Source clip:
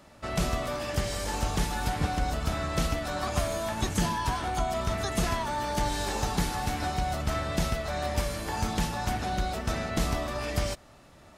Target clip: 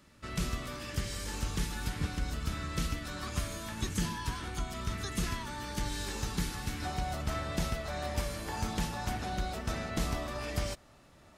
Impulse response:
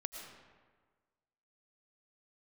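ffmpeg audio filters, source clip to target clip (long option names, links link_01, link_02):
-af "asetnsamples=nb_out_samples=441:pad=0,asendcmd='6.85 equalizer g -2',equalizer=frequency=710:width_type=o:width=0.85:gain=-13,volume=-4.5dB"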